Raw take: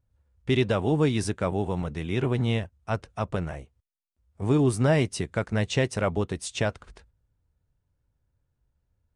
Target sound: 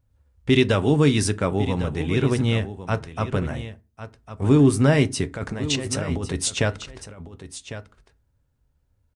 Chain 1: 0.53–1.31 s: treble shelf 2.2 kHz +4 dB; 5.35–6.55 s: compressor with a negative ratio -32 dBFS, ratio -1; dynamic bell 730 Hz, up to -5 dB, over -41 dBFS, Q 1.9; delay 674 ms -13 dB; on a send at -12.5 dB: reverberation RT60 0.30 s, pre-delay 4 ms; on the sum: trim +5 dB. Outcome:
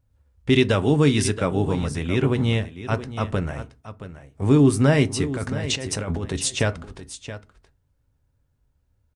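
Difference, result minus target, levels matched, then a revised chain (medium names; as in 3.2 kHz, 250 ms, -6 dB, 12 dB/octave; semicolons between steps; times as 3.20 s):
echo 428 ms early
0.53–1.31 s: treble shelf 2.2 kHz +4 dB; 5.35–6.55 s: compressor with a negative ratio -32 dBFS, ratio -1; dynamic bell 730 Hz, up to -5 dB, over -41 dBFS, Q 1.9; delay 1102 ms -13 dB; on a send at -12.5 dB: reverberation RT60 0.30 s, pre-delay 4 ms; on the sum: trim +5 dB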